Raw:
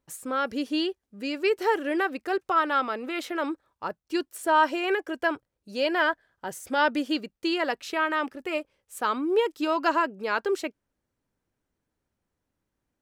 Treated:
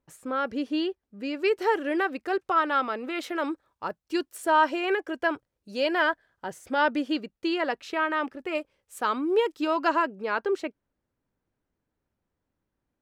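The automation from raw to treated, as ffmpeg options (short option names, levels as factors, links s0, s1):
-af "asetnsamples=n=441:p=0,asendcmd='1.39 lowpass f 5600;3.23 lowpass f 12000;4.56 lowpass f 5400;5.34 lowpass f 8900;6.47 lowpass f 3300;8.55 lowpass f 8600;9.54 lowpass f 5000;10.2 lowpass f 2400',lowpass=f=2400:p=1"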